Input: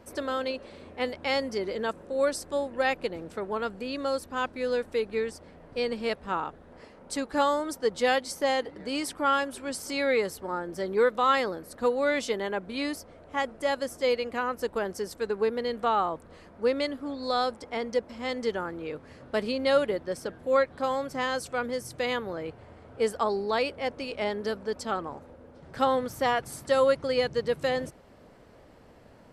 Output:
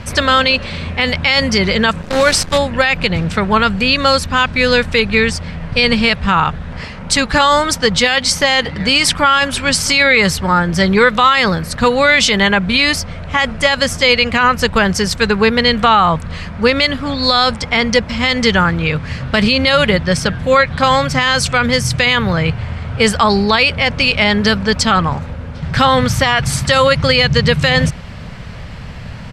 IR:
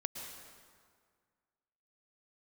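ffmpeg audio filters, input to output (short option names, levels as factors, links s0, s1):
-filter_complex "[0:a]firequalizer=gain_entry='entry(160,0);entry(300,-20);entry(1100,-9);entry(2400,-1)':delay=0.05:min_phase=1,asplit=3[s0][s1][s2];[s0]afade=t=out:st=2.01:d=0.02[s3];[s1]acrusher=bits=8:dc=4:mix=0:aa=0.000001,afade=t=in:st=2.01:d=0.02,afade=t=out:st=2.57:d=0.02[s4];[s2]afade=t=in:st=2.57:d=0.02[s5];[s3][s4][s5]amix=inputs=3:normalize=0,adynamicsmooth=sensitivity=0.5:basefreq=6000,alimiter=level_in=37.6:limit=0.891:release=50:level=0:latency=1,volume=0.891"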